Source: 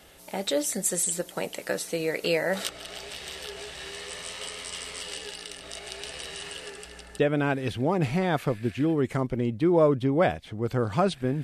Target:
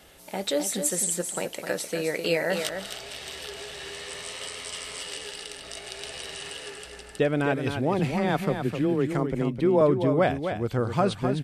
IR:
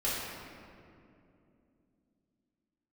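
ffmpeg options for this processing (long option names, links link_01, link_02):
-filter_complex "[0:a]asettb=1/sr,asplit=3[link_01][link_02][link_03];[link_01]atrim=end=7.994[link_04];[link_02]atrim=start=7.99:end=9.81,asetpts=PTS-STARTPTS,afade=type=in:duration=0.004:curve=qsin,afade=type=out:start_time=1.816:duration=0.004:curve=qsin,afreqshift=15[link_05];[link_03]atrim=start=9.806[link_06];[link_04][link_05]acrossfade=duration=0.004:curve1=hsin:curve2=qsin[link_07];[link_07][link_06]acrossfade=duration=0.004:curve1=qsin:curve2=hsin,asplit=2[link_08][link_09];[link_09]aecho=0:1:258:0.422[link_10];[link_08][link_10]amix=inputs=2:normalize=0"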